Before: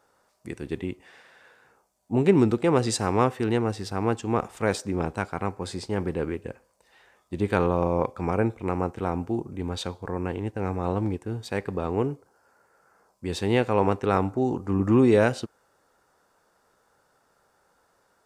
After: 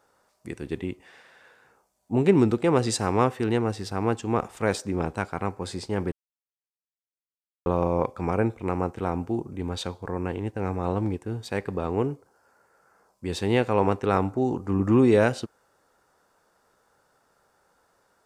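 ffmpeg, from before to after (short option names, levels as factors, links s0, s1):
-filter_complex "[0:a]asplit=3[s0][s1][s2];[s0]atrim=end=6.12,asetpts=PTS-STARTPTS,afade=t=out:st=6.116:d=0.004:c=hsin[s3];[s1]atrim=start=6.12:end=7.66,asetpts=PTS-STARTPTS,volume=0[s4];[s2]atrim=start=7.66,asetpts=PTS-STARTPTS,afade=t=in:d=0.004:c=hsin[s5];[s3][s4][s5]concat=n=3:v=0:a=1"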